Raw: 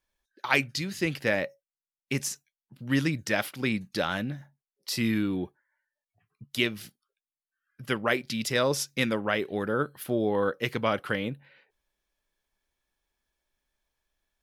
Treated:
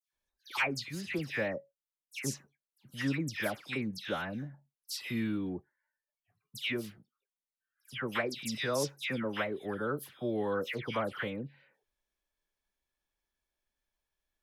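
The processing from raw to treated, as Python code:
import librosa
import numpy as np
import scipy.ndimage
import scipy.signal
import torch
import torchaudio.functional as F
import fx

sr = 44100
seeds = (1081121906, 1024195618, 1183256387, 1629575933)

y = fx.dispersion(x, sr, late='lows', ms=132.0, hz=2200.0)
y = y * librosa.db_to_amplitude(-6.5)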